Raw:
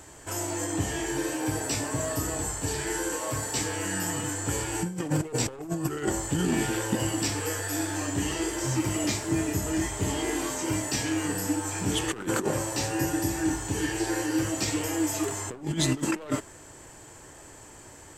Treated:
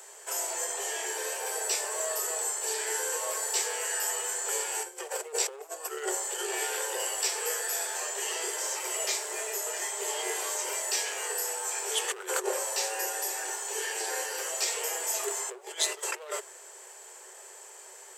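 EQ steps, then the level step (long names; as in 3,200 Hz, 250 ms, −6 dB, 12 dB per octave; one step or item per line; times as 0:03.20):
Chebyshev high-pass filter 370 Hz, order 10
high-shelf EQ 5,400 Hz +7 dB
−1.5 dB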